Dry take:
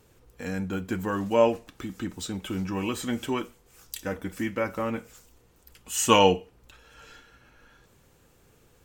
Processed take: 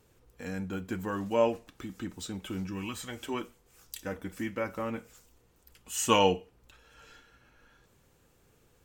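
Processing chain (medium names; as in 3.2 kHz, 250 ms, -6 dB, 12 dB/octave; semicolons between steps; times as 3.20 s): 2.66–3.33 s: peaking EQ 970 Hz -> 120 Hz -12.5 dB 1 oct; trim -5 dB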